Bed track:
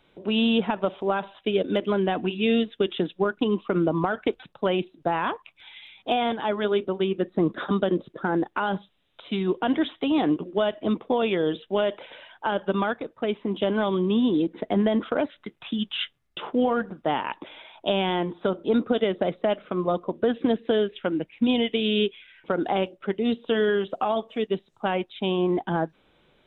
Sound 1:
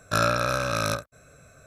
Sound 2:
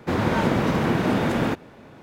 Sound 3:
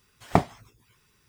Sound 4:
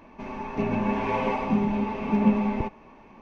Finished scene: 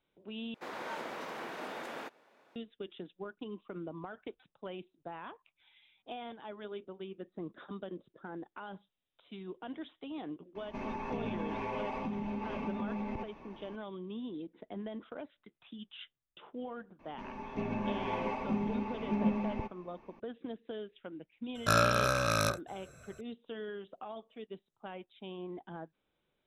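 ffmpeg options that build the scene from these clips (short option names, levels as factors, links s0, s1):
-filter_complex "[4:a]asplit=2[s0][s1];[0:a]volume=0.106[s2];[2:a]highpass=530[s3];[s0]acompressor=threshold=0.0282:ratio=6:attack=3.2:release=140:knee=1:detection=peak[s4];[s2]asplit=2[s5][s6];[s5]atrim=end=0.544[s7];[s3]atrim=end=2.02,asetpts=PTS-STARTPTS,volume=0.188[s8];[s6]atrim=start=2.556[s9];[s4]atrim=end=3.21,asetpts=PTS-STARTPTS,volume=0.708,afade=t=in:d=0.004:c=hsin,afade=t=out:st=3.206:d=0.004:c=hsin,adelay=10550[s10];[s1]atrim=end=3.21,asetpts=PTS-STARTPTS,volume=0.335,afade=t=in:d=0.004:c=hsin,afade=t=out:st=3.206:d=0.004:c=hsin,adelay=16990[s11];[1:a]atrim=end=1.66,asetpts=PTS-STARTPTS,volume=0.668,afade=t=in:d=0.004:c=hsin,afade=t=out:st=1.656:d=0.004:c=hsin,adelay=21550[s12];[s7][s8]acrossfade=d=0.004:c1=hsin:c2=hsin[s13];[s13][s9]acrossfade=d=0.004:c1=hsin:c2=hsin[s14];[s14][s10][s11][s12]amix=inputs=4:normalize=0"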